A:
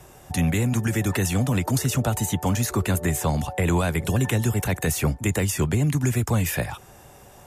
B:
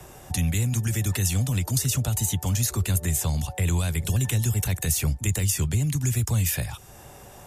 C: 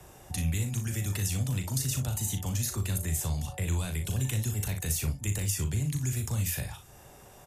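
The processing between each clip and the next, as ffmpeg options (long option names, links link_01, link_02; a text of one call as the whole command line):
ffmpeg -i in.wav -filter_complex "[0:a]acrossover=split=130|3000[link_01][link_02][link_03];[link_02]acompressor=threshold=-48dB:ratio=2[link_04];[link_01][link_04][link_03]amix=inputs=3:normalize=0,volume=3dB" out.wav
ffmpeg -i in.wav -af "aecho=1:1:38|60:0.422|0.251,volume=-7dB" out.wav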